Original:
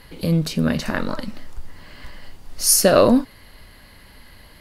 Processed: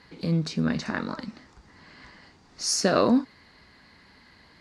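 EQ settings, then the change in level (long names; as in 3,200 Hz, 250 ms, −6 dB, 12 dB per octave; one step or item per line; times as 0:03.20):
loudspeaker in its box 100–6,800 Hz, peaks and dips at 110 Hz −7 dB, 570 Hz −7 dB, 3,000 Hz −7 dB
−4.5 dB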